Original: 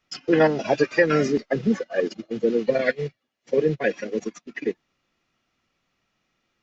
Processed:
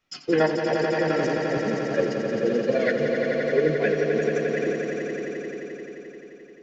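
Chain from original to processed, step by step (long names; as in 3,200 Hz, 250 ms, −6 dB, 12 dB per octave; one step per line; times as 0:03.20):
flanger 1.1 Hz, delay 8.7 ms, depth 9.9 ms, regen +74%
0:00.46–0:01.92: output level in coarse steps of 15 dB
echo that builds up and dies away 87 ms, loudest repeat 5, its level −7 dB
level +2 dB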